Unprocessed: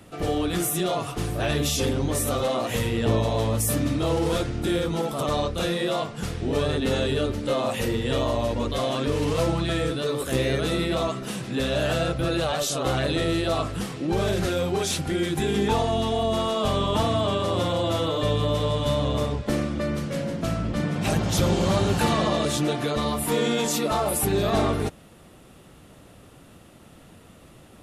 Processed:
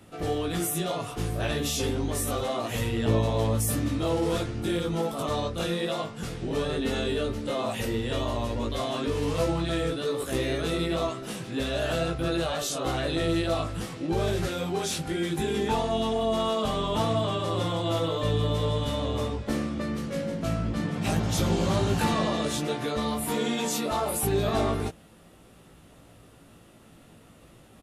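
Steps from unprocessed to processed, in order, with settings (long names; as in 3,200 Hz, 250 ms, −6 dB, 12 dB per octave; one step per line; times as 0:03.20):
double-tracking delay 18 ms −4 dB
level −5 dB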